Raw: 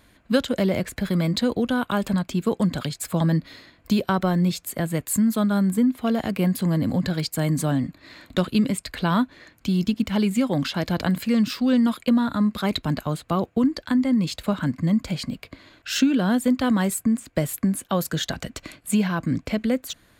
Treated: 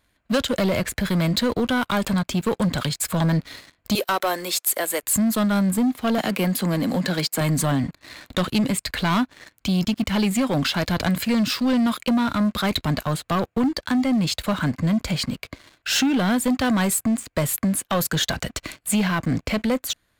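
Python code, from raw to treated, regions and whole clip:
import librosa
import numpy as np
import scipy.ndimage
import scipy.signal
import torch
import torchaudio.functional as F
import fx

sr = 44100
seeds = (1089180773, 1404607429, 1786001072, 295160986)

y = fx.chain(x, sr, fx.highpass(hz=360.0, slope=24),
    fx.peak_eq(hz=12000.0, db=9.5, octaves=1.4), at=(3.95, 5.03))
y = fx.chain(y, sr, fx.highpass(hz=180.0, slope=24),
    fx.band_squash(depth_pct=40), at=(6.18, 7.41))
y = fx.peak_eq(y, sr, hz=250.0, db=-5.0, octaves=2.1)
y = fx.leveller(y, sr, passes=3)
y = F.gain(torch.from_numpy(y), -4.0).numpy()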